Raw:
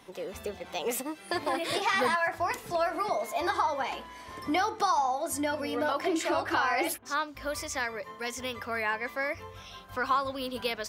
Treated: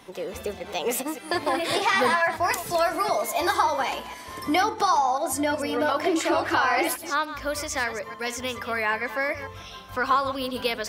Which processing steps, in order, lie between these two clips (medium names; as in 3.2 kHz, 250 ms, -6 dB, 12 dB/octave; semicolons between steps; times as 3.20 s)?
chunks repeated in reverse 148 ms, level -12 dB; 2.42–4.61 s: treble shelf 4.3 kHz -> 7.7 kHz +9.5 dB; trim +5 dB